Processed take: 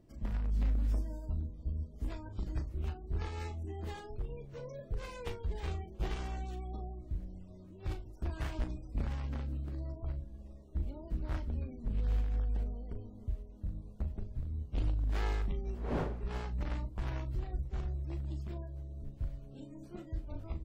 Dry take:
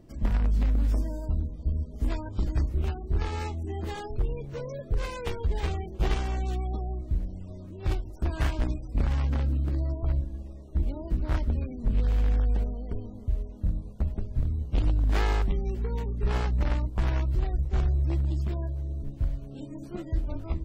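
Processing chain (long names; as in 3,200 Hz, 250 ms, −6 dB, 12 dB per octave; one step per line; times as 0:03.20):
0:15.63–0:16.35: wind on the microphone 550 Hz −40 dBFS
double-tracking delay 38 ms −10 dB
amplitude modulation by smooth noise, depth 50%
level −7.5 dB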